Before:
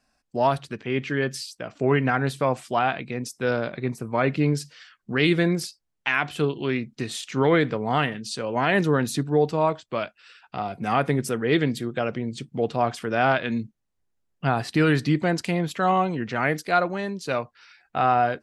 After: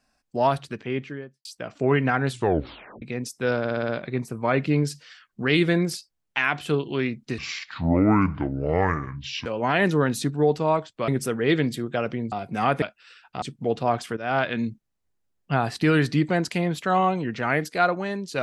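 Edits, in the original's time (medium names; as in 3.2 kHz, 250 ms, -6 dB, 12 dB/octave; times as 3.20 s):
0.74–1.45 s: studio fade out
2.29 s: tape stop 0.73 s
3.59 s: stutter 0.06 s, 6 plays
7.08–8.39 s: speed 63%
10.01–10.61 s: swap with 11.11–12.35 s
13.10–13.39 s: fade in, from -15 dB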